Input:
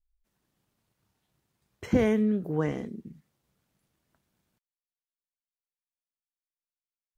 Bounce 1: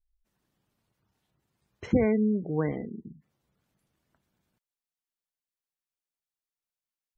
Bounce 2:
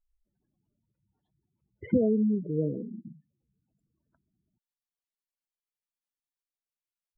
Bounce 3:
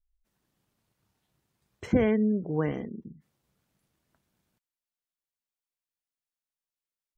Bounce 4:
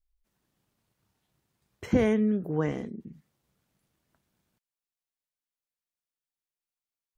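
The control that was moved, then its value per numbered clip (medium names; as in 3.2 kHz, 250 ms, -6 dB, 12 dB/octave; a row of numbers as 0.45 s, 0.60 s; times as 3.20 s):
spectral gate, under each frame's peak: -25 dB, -10 dB, -35 dB, -55 dB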